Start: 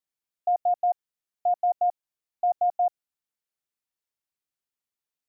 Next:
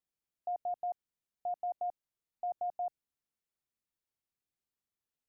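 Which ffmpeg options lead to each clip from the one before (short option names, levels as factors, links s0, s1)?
-af "lowshelf=f=460:g=9,alimiter=level_in=1.26:limit=0.0631:level=0:latency=1:release=11,volume=0.794,volume=0.562"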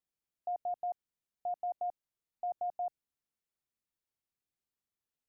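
-af anull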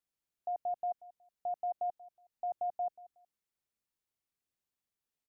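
-af "aecho=1:1:184|368:0.1|0.031"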